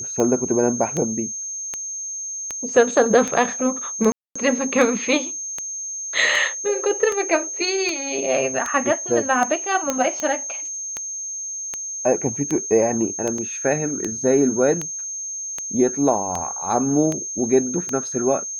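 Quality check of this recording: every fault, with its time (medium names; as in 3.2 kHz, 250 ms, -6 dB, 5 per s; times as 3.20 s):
tick 78 rpm -11 dBFS
whine 6.4 kHz -27 dBFS
4.12–4.36 s: dropout 235 ms
9.90 s: pop -7 dBFS
13.38 s: dropout 3.4 ms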